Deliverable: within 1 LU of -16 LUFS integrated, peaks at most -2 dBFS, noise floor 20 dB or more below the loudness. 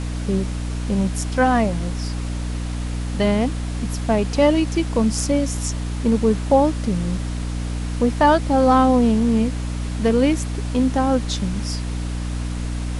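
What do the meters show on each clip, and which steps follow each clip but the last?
hum 60 Hz; highest harmonic 300 Hz; hum level -23 dBFS; noise floor -26 dBFS; noise floor target -41 dBFS; loudness -21.0 LUFS; peak level -3.0 dBFS; loudness target -16.0 LUFS
-> de-hum 60 Hz, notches 5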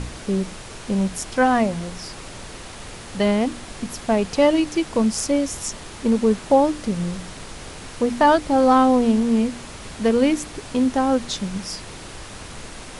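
hum not found; noise floor -38 dBFS; noise floor target -41 dBFS
-> noise print and reduce 6 dB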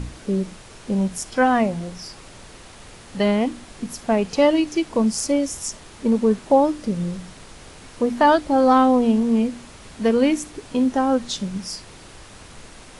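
noise floor -44 dBFS; loudness -20.5 LUFS; peak level -4.5 dBFS; loudness target -16.0 LUFS
-> trim +4.5 dB; peak limiter -2 dBFS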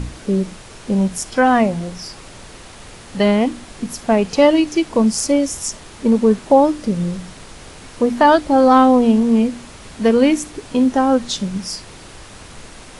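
loudness -16.5 LUFS; peak level -2.0 dBFS; noise floor -39 dBFS

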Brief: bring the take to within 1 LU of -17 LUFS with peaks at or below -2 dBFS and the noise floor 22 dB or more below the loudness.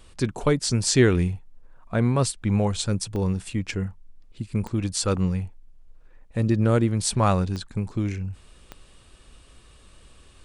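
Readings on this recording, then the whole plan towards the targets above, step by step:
clicks found 4; loudness -24.5 LUFS; peak level -5.5 dBFS; loudness target -17.0 LUFS
-> de-click; trim +7.5 dB; peak limiter -2 dBFS

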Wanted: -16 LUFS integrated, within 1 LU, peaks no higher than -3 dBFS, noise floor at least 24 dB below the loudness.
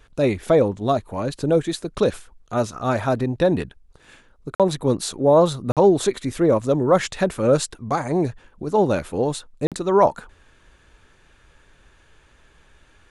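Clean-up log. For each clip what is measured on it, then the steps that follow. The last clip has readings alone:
dropouts 3; longest dropout 47 ms; loudness -21.0 LUFS; peak level -5.0 dBFS; loudness target -16.0 LUFS
-> interpolate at 4.55/5.72/9.67 s, 47 ms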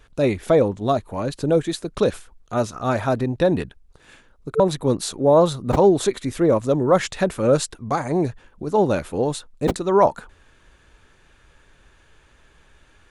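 dropouts 0; loudness -21.0 LUFS; peak level -5.0 dBFS; loudness target -16.0 LUFS
-> trim +5 dB; peak limiter -3 dBFS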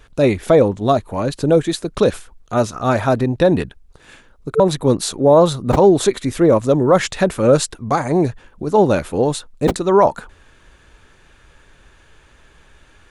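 loudness -16.5 LUFS; peak level -3.0 dBFS; noise floor -51 dBFS

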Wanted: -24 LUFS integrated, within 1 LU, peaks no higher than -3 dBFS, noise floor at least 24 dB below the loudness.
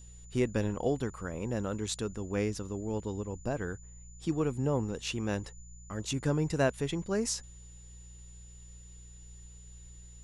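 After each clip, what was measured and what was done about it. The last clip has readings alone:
hum 60 Hz; highest harmonic 180 Hz; hum level -49 dBFS; steady tone 7 kHz; tone level -55 dBFS; loudness -33.5 LUFS; peak level -14.5 dBFS; loudness target -24.0 LUFS
-> de-hum 60 Hz, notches 3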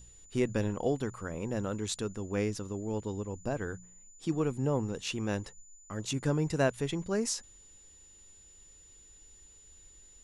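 hum not found; steady tone 7 kHz; tone level -55 dBFS
-> band-stop 7 kHz, Q 30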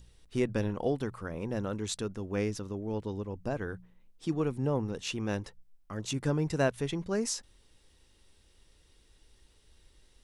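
steady tone not found; loudness -33.5 LUFS; peak level -15.0 dBFS; loudness target -24.0 LUFS
-> trim +9.5 dB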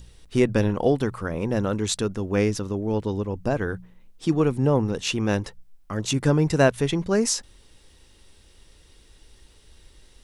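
loudness -24.0 LUFS; peak level -5.5 dBFS; noise floor -55 dBFS

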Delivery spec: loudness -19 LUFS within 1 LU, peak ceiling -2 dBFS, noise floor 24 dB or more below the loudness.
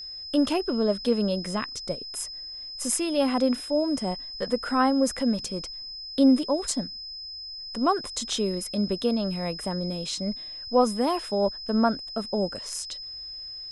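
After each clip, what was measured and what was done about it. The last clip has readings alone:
steady tone 5.1 kHz; tone level -36 dBFS; loudness -27.0 LUFS; peak level -10.0 dBFS; loudness target -19.0 LUFS
-> band-stop 5.1 kHz, Q 30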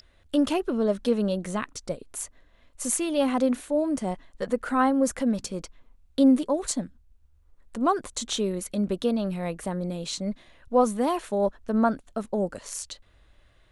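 steady tone not found; loudness -27.0 LUFS; peak level -10.5 dBFS; loudness target -19.0 LUFS
-> trim +8 dB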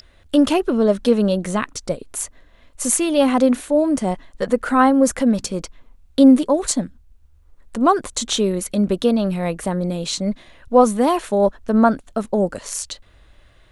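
loudness -19.0 LUFS; peak level -2.5 dBFS; noise floor -52 dBFS

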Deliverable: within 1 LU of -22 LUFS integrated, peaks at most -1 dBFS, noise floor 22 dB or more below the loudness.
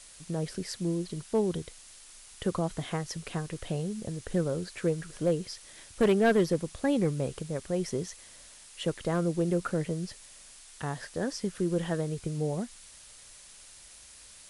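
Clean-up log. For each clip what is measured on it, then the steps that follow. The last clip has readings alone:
clipped samples 0.3%; clipping level -18.0 dBFS; noise floor -52 dBFS; noise floor target -54 dBFS; loudness -31.5 LUFS; peak level -18.0 dBFS; loudness target -22.0 LUFS
-> clip repair -18 dBFS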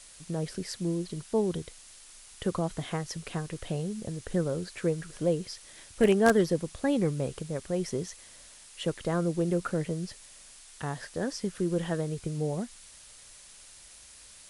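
clipped samples 0.0%; noise floor -52 dBFS; noise floor target -53 dBFS
-> noise reduction 6 dB, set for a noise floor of -52 dBFS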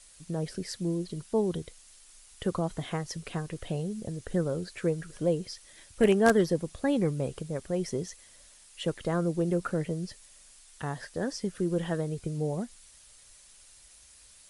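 noise floor -56 dBFS; loudness -31.0 LUFS; peak level -9.0 dBFS; loudness target -22.0 LUFS
-> trim +9 dB; peak limiter -1 dBFS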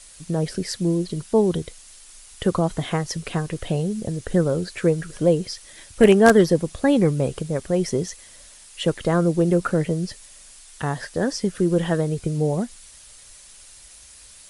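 loudness -22.0 LUFS; peak level -1.0 dBFS; noise floor -47 dBFS

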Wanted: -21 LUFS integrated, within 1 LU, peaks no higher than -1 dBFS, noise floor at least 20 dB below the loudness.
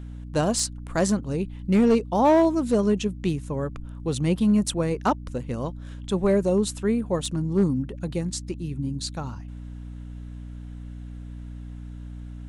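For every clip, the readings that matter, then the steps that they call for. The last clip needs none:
clipped samples 0.5%; clipping level -13.0 dBFS; hum 60 Hz; highest harmonic 300 Hz; hum level -35 dBFS; loudness -24.5 LUFS; peak level -13.0 dBFS; loudness target -21.0 LUFS
-> clip repair -13 dBFS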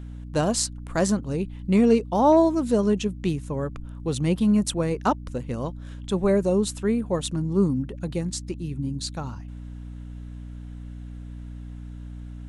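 clipped samples 0.0%; hum 60 Hz; highest harmonic 300 Hz; hum level -35 dBFS
-> de-hum 60 Hz, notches 5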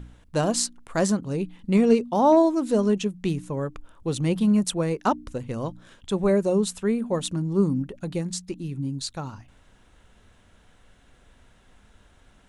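hum not found; loudness -24.5 LUFS; peak level -6.5 dBFS; loudness target -21.0 LUFS
-> trim +3.5 dB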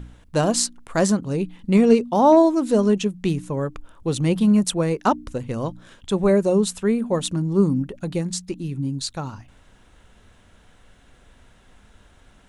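loudness -21.0 LUFS; peak level -3.0 dBFS; noise floor -54 dBFS

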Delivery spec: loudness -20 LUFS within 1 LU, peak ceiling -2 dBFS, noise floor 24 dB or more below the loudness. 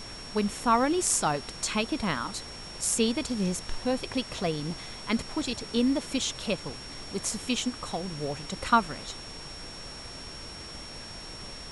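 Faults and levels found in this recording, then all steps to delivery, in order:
steady tone 5.5 kHz; tone level -43 dBFS; noise floor -42 dBFS; noise floor target -54 dBFS; loudness -30.0 LUFS; peak level -8.0 dBFS; loudness target -20.0 LUFS
-> band-stop 5.5 kHz, Q 30; noise print and reduce 12 dB; trim +10 dB; peak limiter -2 dBFS

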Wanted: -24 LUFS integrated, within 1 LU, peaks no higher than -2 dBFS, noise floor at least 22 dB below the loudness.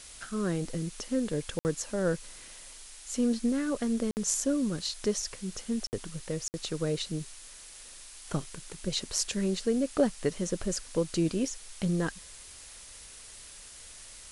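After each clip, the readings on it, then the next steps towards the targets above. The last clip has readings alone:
dropouts 4; longest dropout 59 ms; noise floor -49 dBFS; noise floor target -54 dBFS; loudness -31.5 LUFS; peak level -11.5 dBFS; loudness target -24.0 LUFS
-> interpolate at 1.59/4.11/5.87/6.48 s, 59 ms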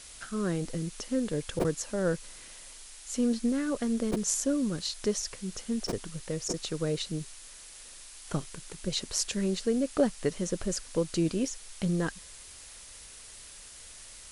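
dropouts 0; noise floor -49 dBFS; noise floor target -54 dBFS
-> noise print and reduce 6 dB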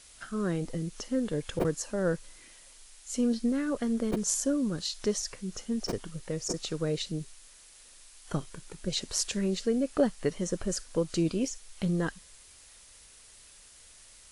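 noise floor -55 dBFS; loudness -31.5 LUFS; peak level -11.5 dBFS; loudness target -24.0 LUFS
-> trim +7.5 dB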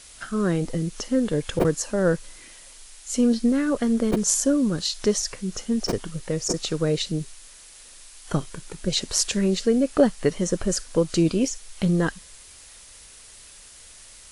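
loudness -24.0 LUFS; peak level -4.0 dBFS; noise floor -47 dBFS

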